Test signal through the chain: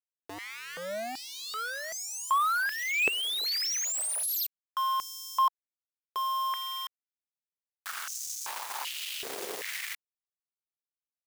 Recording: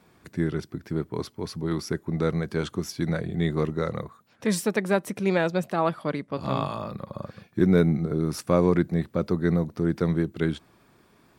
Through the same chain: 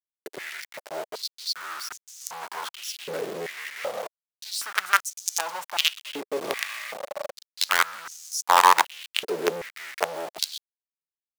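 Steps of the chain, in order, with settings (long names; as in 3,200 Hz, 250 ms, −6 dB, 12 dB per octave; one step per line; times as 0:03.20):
log-companded quantiser 2 bits
high-pass on a step sequencer 2.6 Hz 420–6,300 Hz
level −6 dB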